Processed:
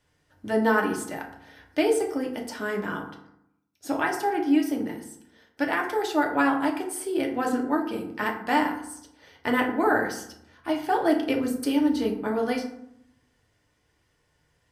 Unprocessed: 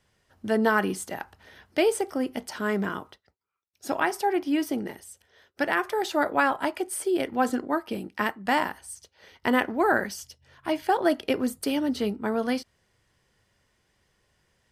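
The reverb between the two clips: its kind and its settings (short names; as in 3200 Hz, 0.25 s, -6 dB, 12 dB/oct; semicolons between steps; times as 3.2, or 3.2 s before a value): FDN reverb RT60 0.74 s, low-frequency decay 1.3×, high-frequency decay 0.5×, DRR 0.5 dB; gain -3 dB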